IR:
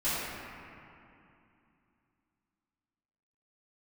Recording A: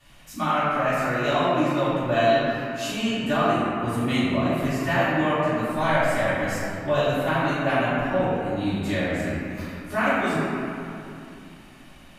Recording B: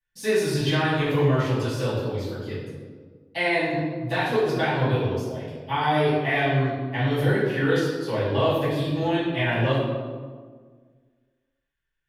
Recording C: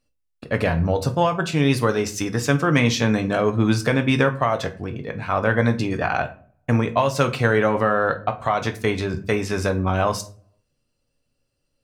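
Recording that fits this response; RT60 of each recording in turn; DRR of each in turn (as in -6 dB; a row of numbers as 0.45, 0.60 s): A; 2.7, 1.6, 0.45 s; -15.5, -12.5, 6.0 dB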